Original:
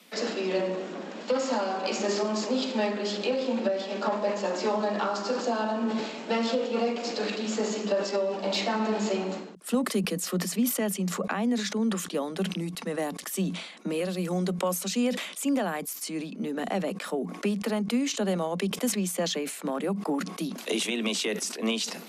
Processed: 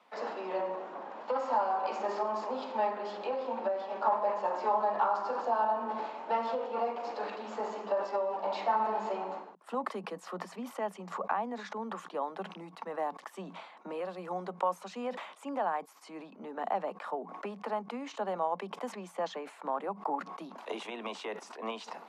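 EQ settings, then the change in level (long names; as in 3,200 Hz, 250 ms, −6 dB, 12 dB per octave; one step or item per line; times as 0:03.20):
resonant band-pass 910 Hz, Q 3
+5.0 dB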